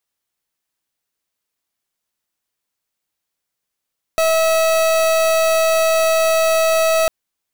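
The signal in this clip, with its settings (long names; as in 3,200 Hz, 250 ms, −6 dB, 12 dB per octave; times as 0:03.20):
pulse wave 647 Hz, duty 38% −15 dBFS 2.90 s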